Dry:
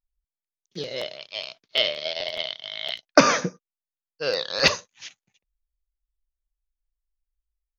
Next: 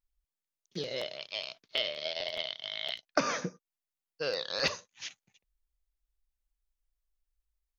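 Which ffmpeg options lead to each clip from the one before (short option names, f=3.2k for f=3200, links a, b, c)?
-af "acompressor=threshold=-36dB:ratio=2"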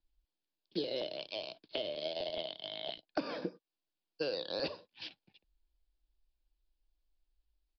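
-filter_complex "[0:a]acrossover=split=270|990[a][b][c];[a]acompressor=threshold=-54dB:ratio=4[d];[b]acompressor=threshold=-41dB:ratio=4[e];[c]acompressor=threshold=-44dB:ratio=4[f];[d][e][f]amix=inputs=3:normalize=0,equalizer=f=125:t=o:w=0.33:g=-6,equalizer=f=315:t=o:w=0.33:g=9,equalizer=f=1.25k:t=o:w=0.33:g=-11,equalizer=f=2k:t=o:w=0.33:g=-11,aresample=11025,aresample=44100,volume=4dB"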